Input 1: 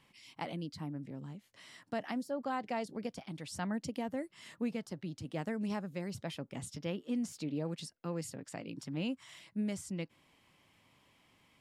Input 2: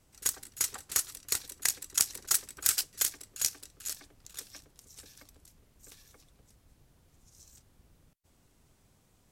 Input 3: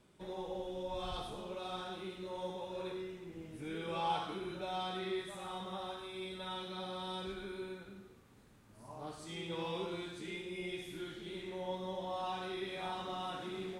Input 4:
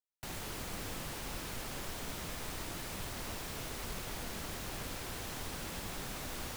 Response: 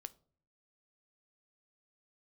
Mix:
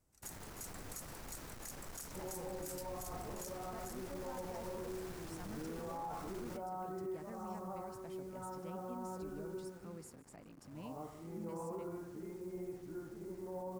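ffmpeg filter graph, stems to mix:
-filter_complex "[0:a]highshelf=f=7.9k:g=8.5,adelay=1800,volume=-13dB,asplit=2[a][b];[b]volume=-19dB[c];[1:a]asoftclip=type=tanh:threshold=-16.5dB,volume=-10.5dB[d];[2:a]lowpass=f=1.3k:w=0.5412,lowpass=f=1.3k:w=1.3066,acrusher=bits=9:mix=0:aa=0.000001,adelay=1950,volume=-1dB[e];[3:a]lowpass=5.6k,acrusher=bits=7:mix=0:aa=0.000001,aeval=exprs='(tanh(112*val(0)+0.4)-tanh(0.4))/112':c=same,volume=-3dB[f];[c]aecho=0:1:150:1[g];[a][d][e][f][g]amix=inputs=5:normalize=0,equalizer=f=3.3k:t=o:w=1.3:g=-8,alimiter=level_in=11.5dB:limit=-24dB:level=0:latency=1:release=33,volume=-11.5dB"

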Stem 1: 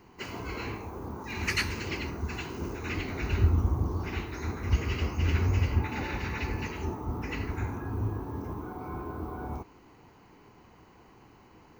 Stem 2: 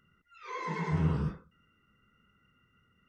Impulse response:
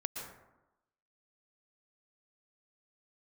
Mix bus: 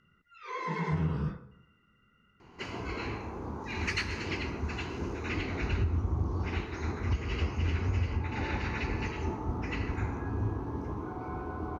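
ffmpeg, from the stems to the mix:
-filter_complex "[0:a]adelay=2400,volume=-4dB,asplit=2[a][b];[b]volume=-4dB[c];[1:a]volume=0.5dB,asplit=2[d][e];[e]volume=-17.5dB[f];[2:a]atrim=start_sample=2205[g];[c][f]amix=inputs=2:normalize=0[h];[h][g]afir=irnorm=-1:irlink=0[i];[a][d][i]amix=inputs=3:normalize=0,lowpass=6k,alimiter=limit=-20.5dB:level=0:latency=1:release=294"

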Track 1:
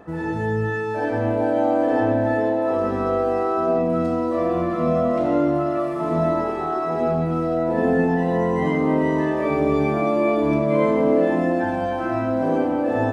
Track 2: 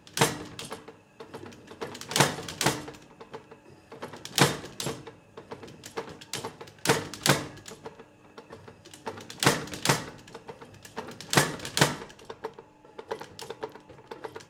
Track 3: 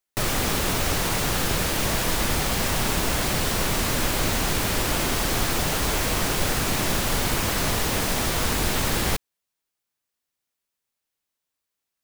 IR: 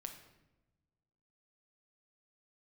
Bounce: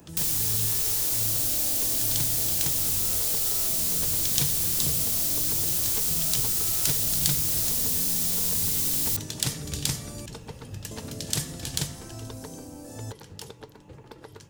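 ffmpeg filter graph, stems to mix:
-filter_complex "[0:a]bass=f=250:g=10,treble=f=4k:g=13,highshelf=f=4.1k:t=q:w=1.5:g=13,volume=-15dB,asplit=3[a][b][c];[a]atrim=end=10.26,asetpts=PTS-STARTPTS,afade=t=out:st=10.256:d=0.004:c=hsin[d];[b]atrim=start=10.26:end=10.91,asetpts=PTS-STARTPTS,volume=0[e];[c]atrim=start=10.91,asetpts=PTS-STARTPTS,afade=t=in:d=0.004:c=hsin[f];[d][e][f]concat=n=3:v=0:a=1[g];[1:a]acompressor=threshold=-34dB:ratio=3,lowshelf=f=360:g=11,dynaudnorm=f=420:g=13:m=10.5dB,volume=-1.5dB[h];[2:a]bass=f=250:g=-7,treble=f=4k:g=9,volume=-9.5dB[i];[g][h][i]amix=inputs=3:normalize=0,highshelf=f=9.9k:g=8.5,acrossover=split=120|3000[j][k][l];[k]acompressor=threshold=-46dB:ratio=2.5[m];[j][m][l]amix=inputs=3:normalize=0"

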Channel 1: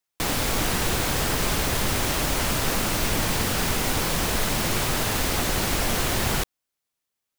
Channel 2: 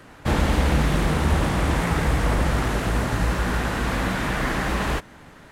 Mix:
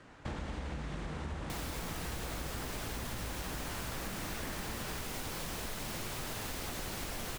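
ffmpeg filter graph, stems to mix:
-filter_complex "[0:a]adelay=1300,volume=-6dB[a];[1:a]lowpass=f=8.3k:w=0.5412,lowpass=f=8.3k:w=1.3066,volume=-9.5dB[b];[a][b]amix=inputs=2:normalize=0,acompressor=threshold=-37dB:ratio=6"

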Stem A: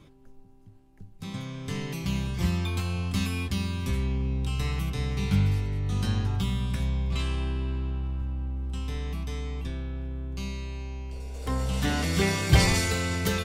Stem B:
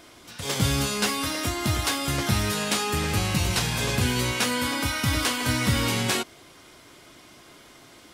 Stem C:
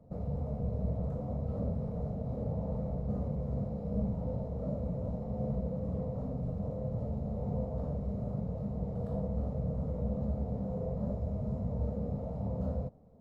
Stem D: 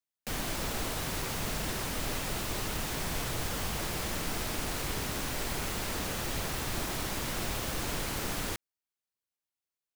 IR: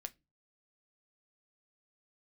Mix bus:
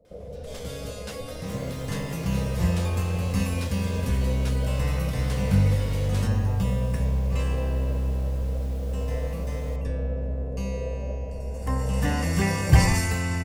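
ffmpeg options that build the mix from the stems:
-filter_complex "[0:a]equalizer=f=3.7k:w=2.7:g=-14.5,aecho=1:1:1.1:0.45,adelay=200,volume=0.5dB[a];[1:a]adelay=50,volume=-15dB[b];[2:a]equalizer=f=125:t=o:w=1:g=-10,equalizer=f=250:t=o:w=1:g=-6,equalizer=f=500:t=o:w=1:g=11,equalizer=f=1k:t=o:w=1:g=-11,volume=-1dB[c];[3:a]adelay=1200,volume=-17dB[d];[a][b][c][d]amix=inputs=4:normalize=0"

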